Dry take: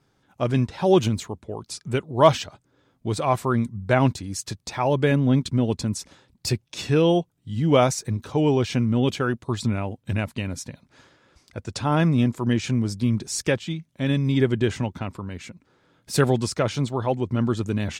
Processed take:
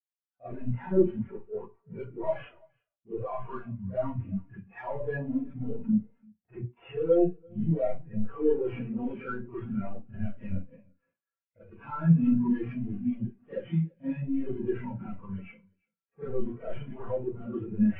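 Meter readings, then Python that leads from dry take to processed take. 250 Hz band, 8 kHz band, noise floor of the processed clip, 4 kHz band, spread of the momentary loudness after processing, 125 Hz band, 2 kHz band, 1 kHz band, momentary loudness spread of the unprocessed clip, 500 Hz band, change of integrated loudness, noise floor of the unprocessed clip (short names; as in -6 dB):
-5.5 dB, under -40 dB, under -85 dBFS, under -25 dB, 16 LU, -10.0 dB, -14.5 dB, -15.5 dB, 14 LU, -7.5 dB, -8.0 dB, -67 dBFS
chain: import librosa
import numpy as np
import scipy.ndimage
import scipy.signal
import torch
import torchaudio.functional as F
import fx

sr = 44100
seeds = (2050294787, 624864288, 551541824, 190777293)

p1 = fx.cvsd(x, sr, bps=16000)
p2 = fx.low_shelf(p1, sr, hz=410.0, db=-11.5)
p3 = fx.hum_notches(p2, sr, base_hz=60, count=6)
p4 = fx.leveller(p3, sr, passes=1)
p5 = fx.over_compress(p4, sr, threshold_db=-33.0, ratio=-1.0)
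p6 = p4 + (p5 * librosa.db_to_amplitude(1.0))
p7 = np.clip(p6, -10.0 ** (-26.0 / 20.0), 10.0 ** (-26.0 / 20.0))
p8 = p7 + 10.0 ** (-12.5 / 20.0) * np.pad(p7, (int(340 * sr / 1000.0), 0))[:len(p7)]
p9 = fx.rev_schroeder(p8, sr, rt60_s=0.46, comb_ms=33, drr_db=-8.5)
p10 = fx.spectral_expand(p9, sr, expansion=2.5)
y = p10 * librosa.db_to_amplitude(-4.5)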